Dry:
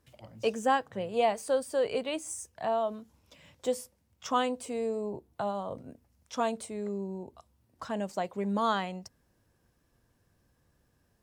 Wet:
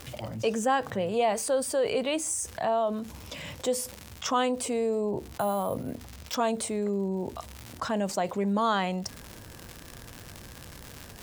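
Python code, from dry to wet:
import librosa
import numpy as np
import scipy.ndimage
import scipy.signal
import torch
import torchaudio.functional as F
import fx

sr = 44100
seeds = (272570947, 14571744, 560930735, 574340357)

y = fx.resample_bad(x, sr, factor=4, down='none', up='hold', at=(5.32, 6.35))
y = fx.dmg_crackle(y, sr, seeds[0], per_s=170.0, level_db=-52.0)
y = fx.env_flatten(y, sr, amount_pct=50)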